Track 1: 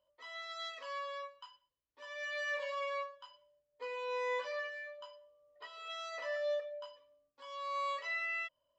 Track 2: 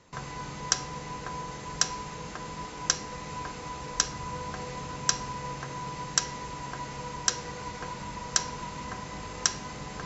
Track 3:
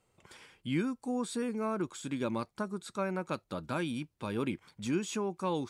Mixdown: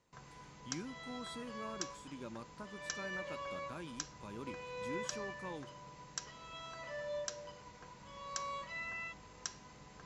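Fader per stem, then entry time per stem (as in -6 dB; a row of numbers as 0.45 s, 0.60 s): -6.0 dB, -17.0 dB, -13.5 dB; 0.65 s, 0.00 s, 0.00 s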